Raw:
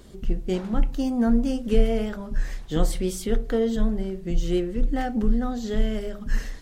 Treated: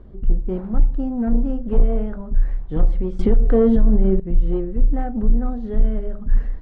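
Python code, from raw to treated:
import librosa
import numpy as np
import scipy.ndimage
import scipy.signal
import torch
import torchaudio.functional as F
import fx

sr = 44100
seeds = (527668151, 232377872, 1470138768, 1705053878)

y = scipy.signal.sosfilt(scipy.signal.butter(2, 1200.0, 'lowpass', fs=sr, output='sos'), x)
y = 10.0 ** (-15.5 / 20.0) * np.tanh(y / 10.0 ** (-15.5 / 20.0))
y = fx.low_shelf(y, sr, hz=88.0, db=11.0)
y = fx.env_flatten(y, sr, amount_pct=70, at=(3.19, 4.2))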